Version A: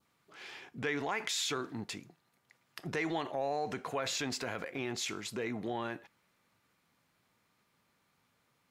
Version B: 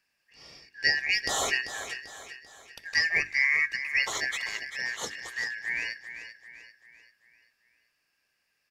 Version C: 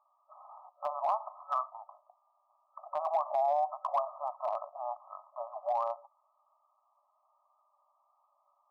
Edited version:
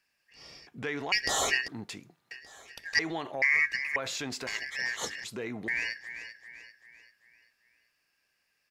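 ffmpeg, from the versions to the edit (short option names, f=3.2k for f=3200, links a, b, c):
-filter_complex "[0:a]asplit=5[a][b][c][d][e];[1:a]asplit=6[f][g][h][i][j][k];[f]atrim=end=0.672[l];[a]atrim=start=0.668:end=1.122[m];[g]atrim=start=1.118:end=1.682[n];[b]atrim=start=1.678:end=2.312[o];[h]atrim=start=2.308:end=2.992[p];[c]atrim=start=2.988:end=3.422[q];[i]atrim=start=3.418:end=3.962[r];[d]atrim=start=3.958:end=4.472[s];[j]atrim=start=4.468:end=5.242[t];[e]atrim=start=5.238:end=5.682[u];[k]atrim=start=5.678[v];[l][m]acrossfade=d=0.004:c1=hsin:c2=hsin[w];[w][n]acrossfade=d=0.004:c1=hsin:c2=hsin[x];[x][o]acrossfade=d=0.004:c1=hsin:c2=hsin[y];[y][p]acrossfade=d=0.004:c1=hsin:c2=hsin[z];[z][q]acrossfade=d=0.004:c1=hsin:c2=hsin[aa];[aa][r]acrossfade=d=0.004:c1=hsin:c2=hsin[ab];[ab][s]acrossfade=d=0.004:c1=hsin:c2=hsin[ac];[ac][t]acrossfade=d=0.004:c1=hsin:c2=hsin[ad];[ad][u]acrossfade=d=0.004:c1=hsin:c2=hsin[ae];[ae][v]acrossfade=d=0.004:c1=hsin:c2=hsin"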